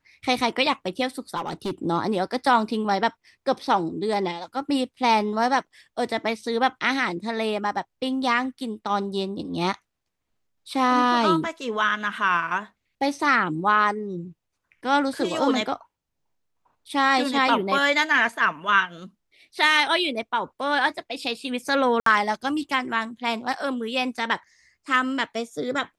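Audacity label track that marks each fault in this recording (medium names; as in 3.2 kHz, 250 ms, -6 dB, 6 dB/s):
1.360000	1.710000	clipped -24 dBFS
22.000000	22.060000	dropout 63 ms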